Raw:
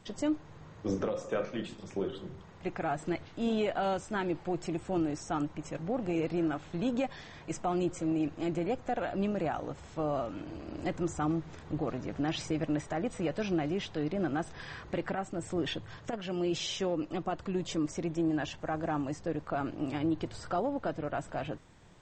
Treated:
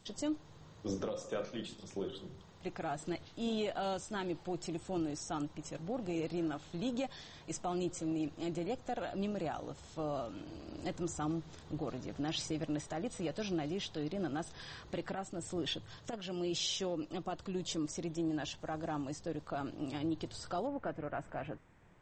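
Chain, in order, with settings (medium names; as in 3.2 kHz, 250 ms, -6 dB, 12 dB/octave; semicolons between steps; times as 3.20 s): resonant high shelf 2.9 kHz +6 dB, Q 1.5, from 20.67 s -7 dB; trim -5.5 dB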